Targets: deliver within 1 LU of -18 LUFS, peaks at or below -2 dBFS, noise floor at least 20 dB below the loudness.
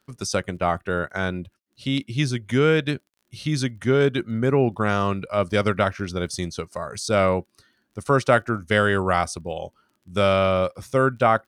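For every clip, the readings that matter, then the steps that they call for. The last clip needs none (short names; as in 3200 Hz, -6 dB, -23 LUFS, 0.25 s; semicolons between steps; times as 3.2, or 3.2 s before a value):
ticks 23/s; loudness -23.0 LUFS; peak -4.5 dBFS; loudness target -18.0 LUFS
-> de-click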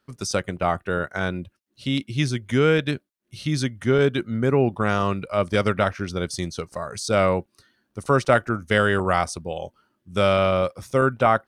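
ticks 0.087/s; loudness -23.0 LUFS; peak -4.5 dBFS; loudness target -18.0 LUFS
-> gain +5 dB; limiter -2 dBFS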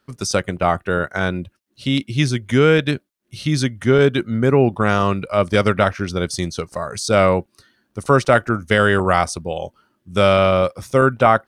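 loudness -18.0 LUFS; peak -2.0 dBFS; noise floor -69 dBFS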